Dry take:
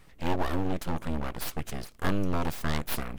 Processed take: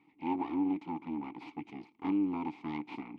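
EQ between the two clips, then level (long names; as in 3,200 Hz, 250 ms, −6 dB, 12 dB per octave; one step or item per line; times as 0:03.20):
formant filter u
band-pass filter 110–4,400 Hz
+6.5 dB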